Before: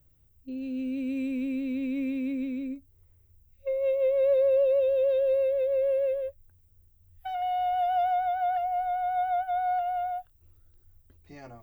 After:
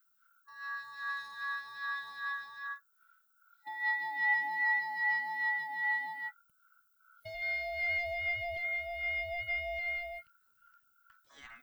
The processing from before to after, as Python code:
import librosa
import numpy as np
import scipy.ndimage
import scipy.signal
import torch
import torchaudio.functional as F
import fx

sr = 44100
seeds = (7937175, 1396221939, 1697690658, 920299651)

y = x * np.sin(2.0 * np.pi * 1400.0 * np.arange(len(x)) / sr)
y = fx.phaser_stages(y, sr, stages=2, low_hz=450.0, high_hz=1500.0, hz=2.5, feedback_pct=35)